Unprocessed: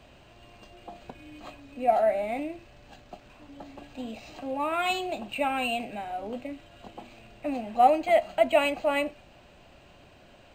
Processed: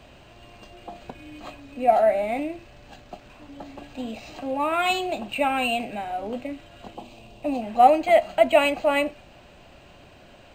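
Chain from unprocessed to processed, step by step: 6.95–7.62 band shelf 1700 Hz -9 dB 1 oct; gain +4.5 dB

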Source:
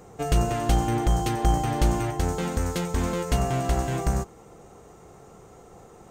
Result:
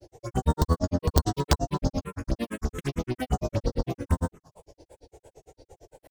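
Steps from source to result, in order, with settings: grains 83 ms, grains 8.8/s, pitch spread up and down by 7 st; wrapped overs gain 13 dB; envelope phaser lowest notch 180 Hz, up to 2400 Hz, full sweep at -24.5 dBFS; gain +3 dB

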